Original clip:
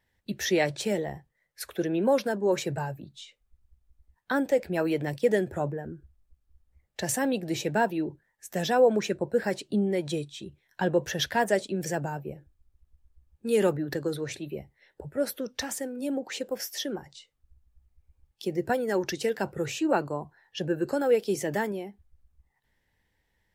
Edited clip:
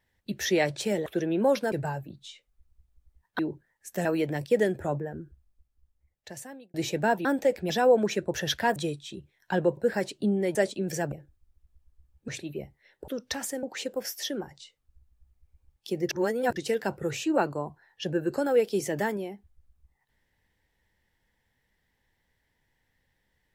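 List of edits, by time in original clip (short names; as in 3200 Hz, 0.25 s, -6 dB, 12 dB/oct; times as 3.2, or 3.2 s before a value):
1.06–1.69 cut
2.35–2.65 cut
4.32–4.77 swap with 7.97–8.63
5.89–7.46 fade out linear
9.27–10.05 swap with 11.06–11.48
12.05–12.3 cut
13.46–14.25 cut
15.05–15.36 cut
15.91–16.18 cut
18.64–19.11 reverse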